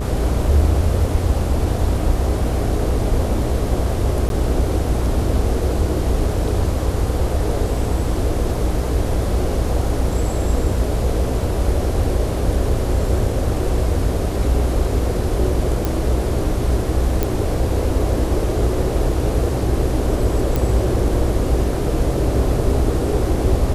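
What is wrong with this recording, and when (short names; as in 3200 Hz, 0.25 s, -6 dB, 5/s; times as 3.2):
buzz 60 Hz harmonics 26 -23 dBFS
4.29–4.3 gap
15.85 pop
17.23 pop
20.56 pop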